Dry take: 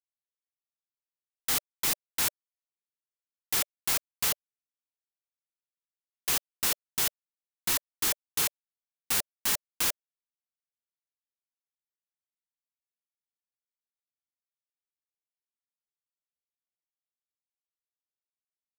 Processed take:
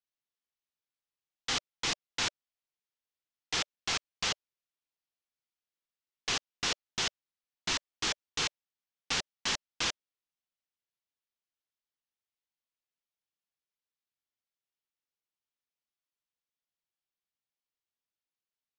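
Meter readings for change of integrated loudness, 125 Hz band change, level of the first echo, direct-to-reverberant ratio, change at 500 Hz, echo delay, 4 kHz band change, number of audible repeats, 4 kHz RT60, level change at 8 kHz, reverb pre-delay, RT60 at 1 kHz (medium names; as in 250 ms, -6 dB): -5.0 dB, 0.0 dB, no echo, no reverb, 0.0 dB, no echo, +1.5 dB, no echo, no reverb, -6.5 dB, no reverb, no reverb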